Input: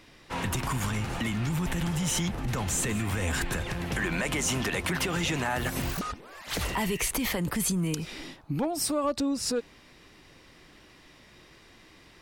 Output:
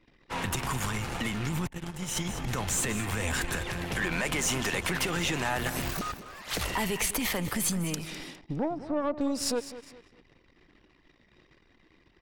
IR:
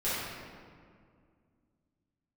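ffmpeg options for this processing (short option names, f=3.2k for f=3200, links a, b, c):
-filter_complex "[0:a]asettb=1/sr,asplit=3[a][b][c];[a]atrim=end=8.404[d];[b]atrim=start=8.4:end=9.21,asetpts=PTS-STARTPTS,afade=t=in:d=0.004:c=qsin,afade=t=out:st=0.806:d=0.004:c=qsin,lowpass=1.1k[e];[c]atrim=start=9.206[f];[d][e]acrossfade=d=0.004:c1=hsin:c2=qsin[g];[g][f]acrossfade=d=0.004:c1=qsin:c2=hsin,aeval=exprs='0.168*(cos(1*acos(clip(val(0)/0.168,-1,1)))-cos(1*PI/2))+0.0119*(cos(6*acos(clip(val(0)/0.168,-1,1)))-cos(6*PI/2))':c=same,aecho=1:1:204|408|612:0.2|0.0718|0.0259,asettb=1/sr,asplit=3[h][i][j];[h]atrim=end=1.674[k];[i]atrim=start=1.67:end=2.29,asetpts=PTS-STARTPTS,afade=t=in:d=0.004:c=qsin,afade=t=out:st=0.616:d=0.004:c=qsin,agate=range=-21dB:threshold=-26dB:ratio=16:detection=peak[l];[j]atrim=start=2.286[m];[k][l]acrossfade=d=0.004:c1=hsin:c2=qsin[n];[n][m]acrossfade=d=0.004:c1=qsin:c2=hsin,anlmdn=0.00251,lowshelf=f=350:g=-3.5"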